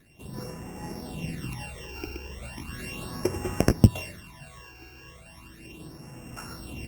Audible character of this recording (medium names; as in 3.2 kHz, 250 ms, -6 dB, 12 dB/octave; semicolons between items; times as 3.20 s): a buzz of ramps at a fixed pitch in blocks of 16 samples; phasing stages 12, 0.36 Hz, lowest notch 190–4000 Hz; Opus